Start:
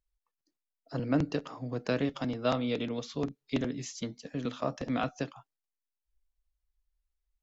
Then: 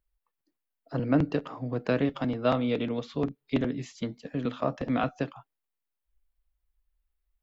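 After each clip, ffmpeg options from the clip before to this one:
-af "equalizer=f=6100:w=1.2:g=-13.5,volume=1.58"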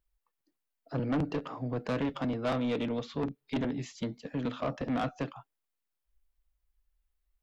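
-af "asoftclip=type=tanh:threshold=0.0531"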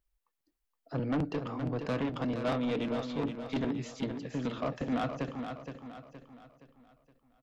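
-af "aecho=1:1:469|938|1407|1876|2345:0.422|0.177|0.0744|0.0312|0.0131,volume=0.891"

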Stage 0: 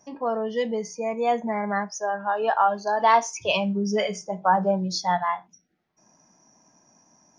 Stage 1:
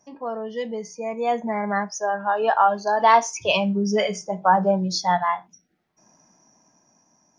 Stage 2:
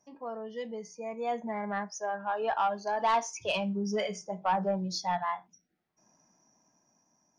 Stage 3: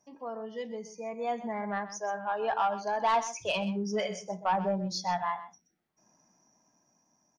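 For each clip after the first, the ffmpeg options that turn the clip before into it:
-af "dynaudnorm=f=310:g=9:m=3.76,volume=0.668"
-af "asoftclip=type=tanh:threshold=0.316,volume=0.355"
-af "aecho=1:1:127:0.211"

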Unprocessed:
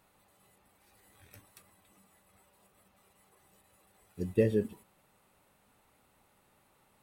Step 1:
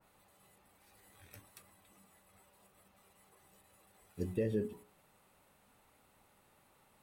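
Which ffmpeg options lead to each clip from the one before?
-af "bandreject=f=60:t=h:w=6,bandreject=f=120:t=h:w=6,bandreject=f=180:t=h:w=6,bandreject=f=240:t=h:w=6,bandreject=f=300:t=h:w=6,bandreject=f=360:t=h:w=6,bandreject=f=420:t=h:w=6,alimiter=limit=0.0668:level=0:latency=1:release=261,adynamicequalizer=threshold=0.001:dfrequency=2100:dqfactor=0.7:tfrequency=2100:tqfactor=0.7:attack=5:release=100:ratio=0.375:range=2:mode=cutabove:tftype=highshelf"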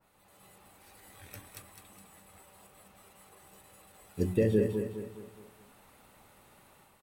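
-filter_complex "[0:a]dynaudnorm=f=110:g=5:m=2.51,asplit=2[s0][s1];[s1]aecho=0:1:208|416|624|832|1040:0.447|0.192|0.0826|0.0355|0.0153[s2];[s0][s2]amix=inputs=2:normalize=0"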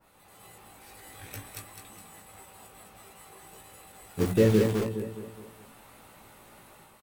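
-filter_complex "[0:a]asplit=2[s0][s1];[s1]aeval=exprs='(mod(28.2*val(0)+1,2)-1)/28.2':c=same,volume=0.398[s2];[s0][s2]amix=inputs=2:normalize=0,asplit=2[s3][s4];[s4]adelay=18,volume=0.562[s5];[s3][s5]amix=inputs=2:normalize=0,volume=1.33"

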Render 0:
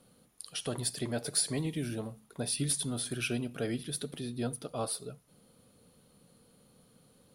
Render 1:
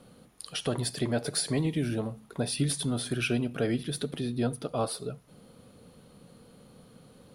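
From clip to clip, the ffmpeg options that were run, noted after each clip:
-filter_complex "[0:a]aemphasis=mode=reproduction:type=cd,asplit=2[s0][s1];[s1]acompressor=threshold=0.00631:ratio=6,volume=0.794[s2];[s0][s2]amix=inputs=2:normalize=0,volume=1.58"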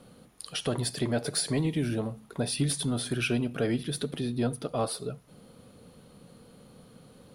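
-af "aeval=exprs='0.168*(cos(1*acos(clip(val(0)/0.168,-1,1)))-cos(1*PI/2))+0.00422*(cos(5*acos(clip(val(0)/0.168,-1,1)))-cos(5*PI/2))':c=same"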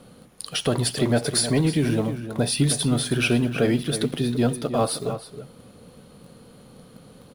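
-filter_complex "[0:a]asplit=2[s0][s1];[s1]acrusher=bits=6:mix=0:aa=0.000001,volume=0.251[s2];[s0][s2]amix=inputs=2:normalize=0,asplit=2[s3][s4];[s4]adelay=314.9,volume=0.316,highshelf=f=4000:g=-7.08[s5];[s3][s5]amix=inputs=2:normalize=0,volume=1.78"

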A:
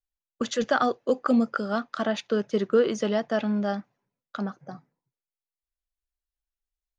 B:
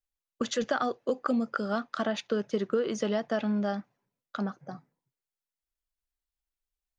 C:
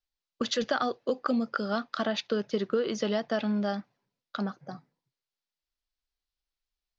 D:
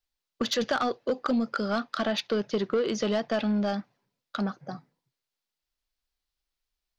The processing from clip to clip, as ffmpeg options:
-af "acompressor=threshold=0.0708:ratio=6,volume=0.891"
-af "lowpass=f=4700:t=q:w=2"
-af "asoftclip=type=tanh:threshold=0.0794,volume=1.5"

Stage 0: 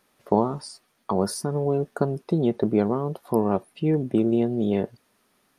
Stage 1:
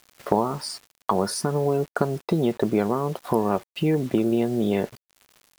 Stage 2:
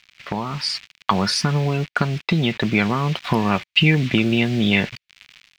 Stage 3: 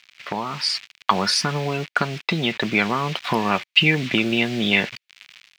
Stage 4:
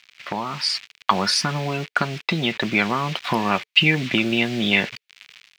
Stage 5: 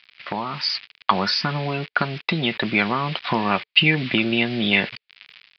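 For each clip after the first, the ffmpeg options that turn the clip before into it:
-af "equalizer=f=1900:w=0.43:g=7.5,acompressor=threshold=0.0158:ratio=2,acrusher=bits=8:mix=0:aa=0.000001,volume=2.82"
-af "firequalizer=gain_entry='entry(140,0);entry(400,-13);entry(2300,12);entry(10000,-16)':delay=0.05:min_phase=1,dynaudnorm=f=220:g=5:m=3.76"
-af "highpass=f=370:p=1,volume=1.19"
-af "bandreject=f=440:w=13"
-af "aresample=11025,aresample=44100"

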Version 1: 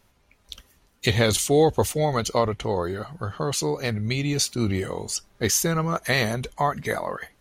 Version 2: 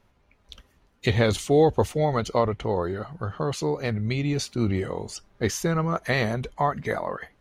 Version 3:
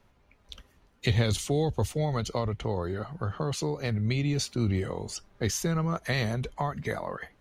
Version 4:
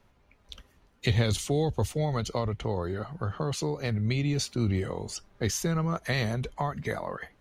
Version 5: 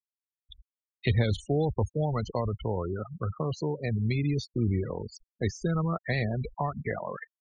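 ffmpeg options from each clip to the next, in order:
-af "lowpass=f=2100:p=1"
-filter_complex "[0:a]acrossover=split=180|3000[s0][s1][s2];[s1]acompressor=threshold=0.0251:ratio=2.5[s3];[s0][s3][s2]amix=inputs=3:normalize=0"
-af anull
-filter_complex "[0:a]afftfilt=real='re*gte(hypot(re,im),0.0355)':imag='im*gte(hypot(re,im),0.0355)':win_size=1024:overlap=0.75,acrossover=split=3900[s0][s1];[s1]acompressor=threshold=0.00355:ratio=4:attack=1:release=60[s2];[s0][s2]amix=inputs=2:normalize=0"

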